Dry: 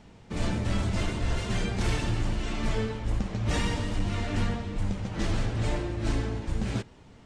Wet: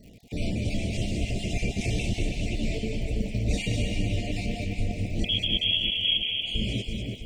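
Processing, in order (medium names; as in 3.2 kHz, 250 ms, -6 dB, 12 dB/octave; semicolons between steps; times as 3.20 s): random holes in the spectrogram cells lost 31%; 5.24–6.46 s: frequency inversion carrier 3.3 kHz; graphic EQ with 31 bands 250 Hz +3 dB, 1.25 kHz -10 dB, 2.5 kHz +6 dB; in parallel at +3 dB: peak limiter -24 dBFS, peak gain reduction 10 dB; on the sum: crackle 83 per s -38 dBFS; elliptic band-stop 680–2200 Hz, stop band 60 dB; on a send: two-band feedback delay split 2.3 kHz, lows 329 ms, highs 199 ms, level -3.5 dB; on the sum: trim -5.5 dB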